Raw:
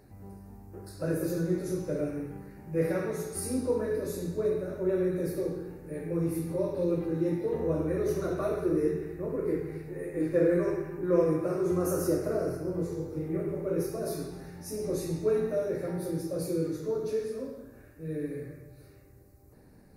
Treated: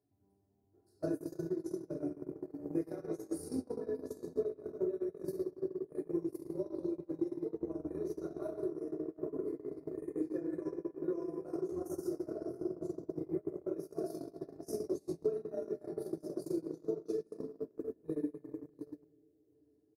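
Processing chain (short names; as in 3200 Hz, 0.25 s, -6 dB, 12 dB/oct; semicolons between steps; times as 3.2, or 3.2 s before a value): resonant high shelf 3800 Hz +9.5 dB, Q 1.5; reverb removal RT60 0.93 s; tilt shelf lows +8 dB; notches 50/100/150/200/250/300/350/400 Hz; comb 2.9 ms, depth 67%; narrowing echo 0.694 s, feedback 61%, band-pass 390 Hz, level -12 dB; shoebox room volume 120 m³, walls hard, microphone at 0.36 m; limiter -14 dBFS, peak gain reduction 6 dB; HPF 94 Hz 24 dB/oct; compressor 16:1, threshold -29 dBFS, peak gain reduction 12.5 dB; gate -30 dBFS, range -33 dB; gain +2.5 dB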